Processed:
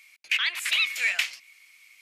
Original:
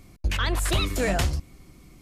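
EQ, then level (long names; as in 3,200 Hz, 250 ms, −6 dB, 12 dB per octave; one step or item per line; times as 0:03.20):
dynamic equaliser 9,800 Hz, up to −5 dB, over −49 dBFS, Q 0.92
high-pass with resonance 2,300 Hz, resonance Q 4.1
0.0 dB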